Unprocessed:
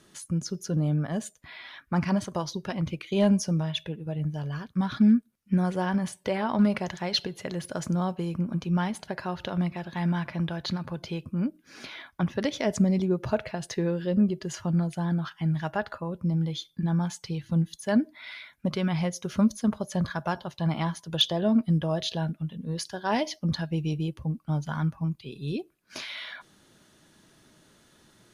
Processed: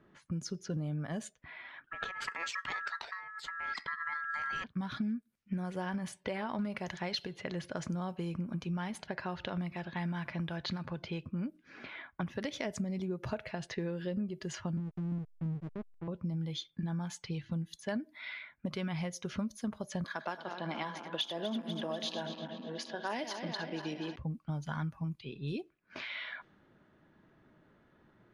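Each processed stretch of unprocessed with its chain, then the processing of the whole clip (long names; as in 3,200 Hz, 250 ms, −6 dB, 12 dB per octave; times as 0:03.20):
0:01.84–0:04.64: high-shelf EQ 5,100 Hz +8.5 dB + compressor whose output falls as the input rises −33 dBFS + ring modulation 1,500 Hz
0:14.77–0:16.08: inverse Chebyshev low-pass filter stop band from 1,100 Hz, stop band 50 dB + slack as between gear wheels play −32 dBFS + one half of a high-frequency compander encoder only
0:20.04–0:24.16: feedback delay that plays each chunk backwards 122 ms, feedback 81%, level −12 dB + high-pass filter 230 Hz 24 dB per octave
whole clip: low-pass that shuts in the quiet parts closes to 1,300 Hz, open at −25 dBFS; parametric band 2,100 Hz +4 dB 1.1 octaves; downward compressor 6 to 1, threshold −29 dBFS; level −4 dB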